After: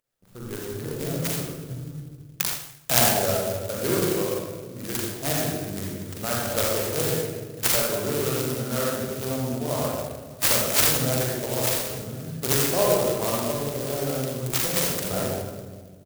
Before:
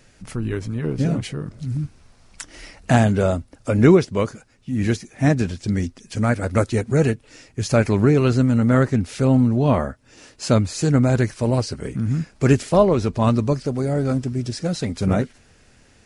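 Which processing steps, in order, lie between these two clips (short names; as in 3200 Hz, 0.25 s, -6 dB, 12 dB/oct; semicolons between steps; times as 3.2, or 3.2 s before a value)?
Wiener smoothing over 15 samples; feedback echo 1.068 s, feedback 59%, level -22 dB; gate -36 dBFS, range -24 dB; graphic EQ 125/250/1000/2000/8000 Hz -6/-10/-6/-11/+10 dB; vocal rider within 3 dB 2 s; tilt +4 dB/oct; reverb RT60 1.5 s, pre-delay 41 ms, DRR -5.5 dB; clock jitter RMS 0.085 ms; gain -2.5 dB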